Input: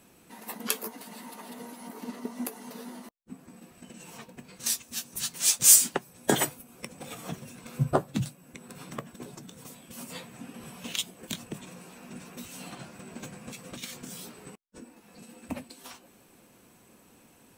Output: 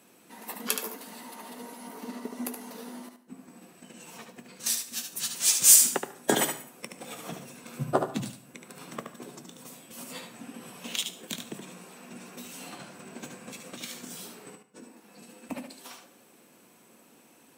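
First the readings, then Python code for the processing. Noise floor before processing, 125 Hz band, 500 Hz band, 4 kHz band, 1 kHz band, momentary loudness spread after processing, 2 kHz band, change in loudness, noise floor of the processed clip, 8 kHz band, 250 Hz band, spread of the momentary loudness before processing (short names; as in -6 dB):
-59 dBFS, -6.0 dB, +1.0 dB, +1.0 dB, +1.0 dB, 19 LU, +1.0 dB, +1.0 dB, -59 dBFS, +1.0 dB, -1.0 dB, 19 LU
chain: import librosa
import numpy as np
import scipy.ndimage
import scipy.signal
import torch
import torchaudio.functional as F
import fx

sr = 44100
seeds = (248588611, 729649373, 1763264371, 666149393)

y = scipy.signal.sosfilt(scipy.signal.butter(2, 200.0, 'highpass', fs=sr, output='sos'), x)
y = fx.echo_feedback(y, sr, ms=73, feedback_pct=16, wet_db=-6.5)
y = fx.rev_plate(y, sr, seeds[0], rt60_s=0.55, hf_ratio=0.7, predelay_ms=90, drr_db=17.0)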